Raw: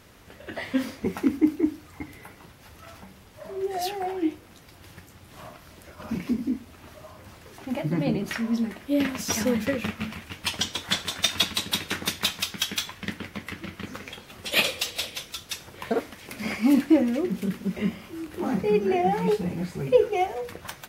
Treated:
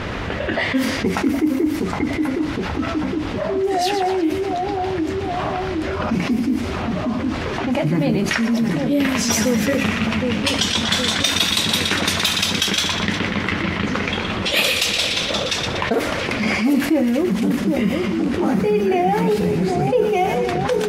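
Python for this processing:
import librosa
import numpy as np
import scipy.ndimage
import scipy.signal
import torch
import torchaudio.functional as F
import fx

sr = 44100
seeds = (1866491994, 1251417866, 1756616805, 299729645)

y = fx.echo_split(x, sr, split_hz=1300.0, low_ms=765, high_ms=120, feedback_pct=52, wet_db=-10)
y = fx.env_lowpass(y, sr, base_hz=2900.0, full_db=-21.0)
y = fx.env_flatten(y, sr, amount_pct=70)
y = y * 10.0 ** (-1.0 / 20.0)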